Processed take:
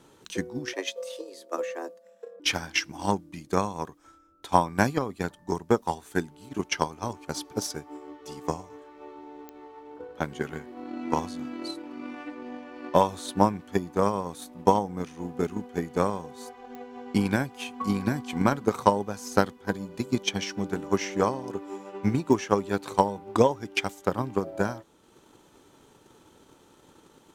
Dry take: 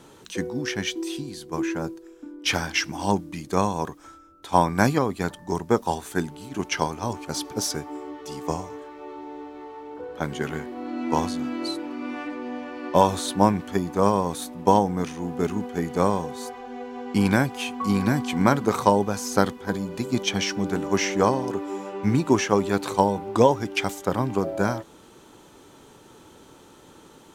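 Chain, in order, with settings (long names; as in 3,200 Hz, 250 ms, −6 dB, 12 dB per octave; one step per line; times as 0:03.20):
transient designer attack +7 dB, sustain −4 dB
0:00.73–0:02.40: frequency shifter +180 Hz
digital clicks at 0:09.49/0:16.75/0:22.33, −19 dBFS
level −7 dB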